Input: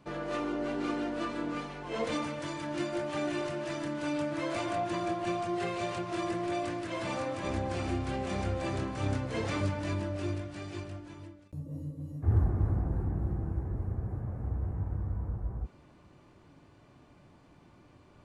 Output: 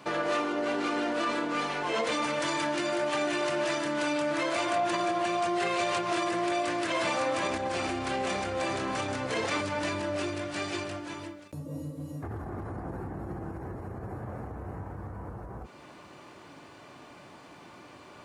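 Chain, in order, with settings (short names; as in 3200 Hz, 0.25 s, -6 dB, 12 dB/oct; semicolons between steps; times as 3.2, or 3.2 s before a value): in parallel at -1 dB: compressor, threshold -40 dBFS, peak gain reduction 18.5 dB; on the sum: limiter -26 dBFS, peak gain reduction 10.5 dB; HPF 610 Hz 6 dB/oct; gain +9 dB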